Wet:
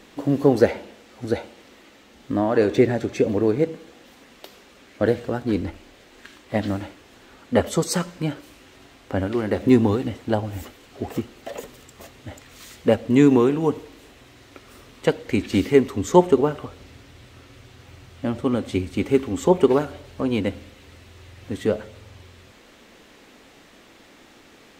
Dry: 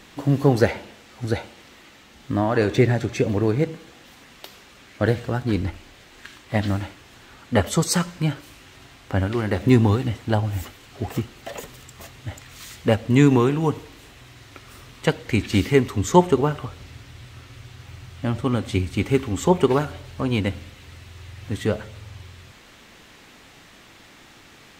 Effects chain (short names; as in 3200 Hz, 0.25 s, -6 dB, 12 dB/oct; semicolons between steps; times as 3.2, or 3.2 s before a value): graphic EQ 125/250/500 Hz -5/+5/+6 dB; gain -3.5 dB